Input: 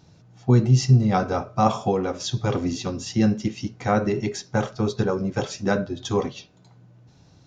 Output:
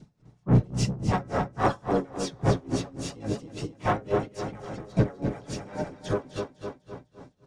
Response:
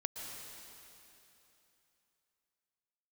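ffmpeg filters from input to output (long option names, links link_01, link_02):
-filter_complex "[0:a]highshelf=frequency=2500:gain=-7.5,aecho=1:1:7:0.54,adynamicequalizer=threshold=0.0158:dfrequency=850:dqfactor=2:tfrequency=850:tqfactor=2:attack=5:release=100:ratio=0.375:range=2.5:mode=cutabove:tftype=bell,aphaser=in_gain=1:out_gain=1:delay=3.8:decay=0.44:speed=2:type=sinusoidal,asplit=4[link_01][link_02][link_03][link_04];[link_02]asetrate=22050,aresample=44100,atempo=2,volume=-10dB[link_05];[link_03]asetrate=55563,aresample=44100,atempo=0.793701,volume=-6dB[link_06];[link_04]asetrate=66075,aresample=44100,atempo=0.66742,volume=-6dB[link_07];[link_01][link_05][link_06][link_07]amix=inputs=4:normalize=0,asoftclip=type=tanh:threshold=-11dB,aecho=1:1:253|506|759|1012|1265|1518|1771:0.398|0.223|0.125|0.0699|0.0392|0.0219|0.0123,aeval=exprs='val(0)*pow(10,-23*(0.5-0.5*cos(2*PI*3.6*n/s))/20)':channel_layout=same,volume=-2dB"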